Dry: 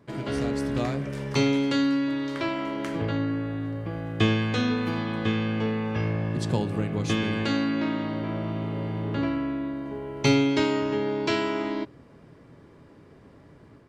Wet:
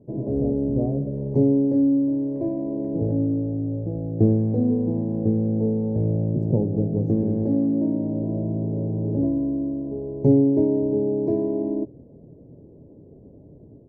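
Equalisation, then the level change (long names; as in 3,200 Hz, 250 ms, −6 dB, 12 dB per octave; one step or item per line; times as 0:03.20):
inverse Chebyshev low-pass filter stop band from 1,200 Hz, stop band 40 dB
+5.0 dB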